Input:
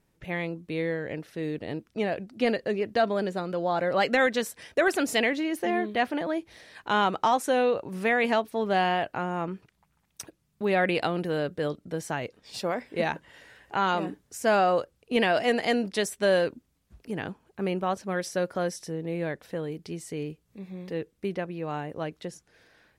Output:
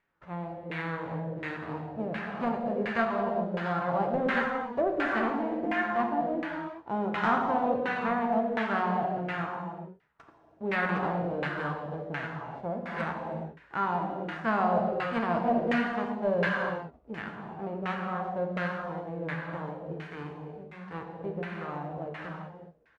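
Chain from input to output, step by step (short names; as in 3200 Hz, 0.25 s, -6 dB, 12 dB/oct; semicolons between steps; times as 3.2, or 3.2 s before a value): spectral whitening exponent 0.3; doubler 13 ms -13 dB; non-linear reverb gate 0.44 s flat, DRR -1.5 dB; LFO low-pass saw down 1.4 Hz 480–2000 Hz; gain -8 dB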